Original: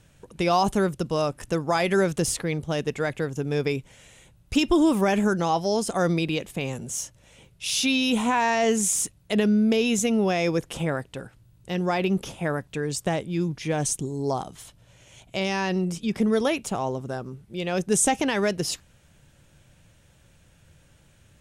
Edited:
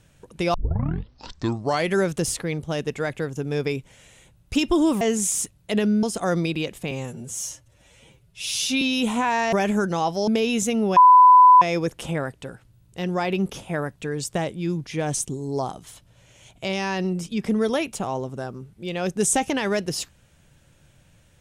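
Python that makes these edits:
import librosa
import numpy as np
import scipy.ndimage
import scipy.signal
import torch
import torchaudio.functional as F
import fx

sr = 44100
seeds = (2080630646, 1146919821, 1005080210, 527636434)

y = fx.edit(x, sr, fx.tape_start(start_s=0.54, length_s=1.37),
    fx.swap(start_s=5.01, length_s=0.75, other_s=8.62, other_length_s=1.02),
    fx.stretch_span(start_s=6.64, length_s=1.27, factor=1.5),
    fx.insert_tone(at_s=10.33, length_s=0.65, hz=1000.0, db=-7.5), tone=tone)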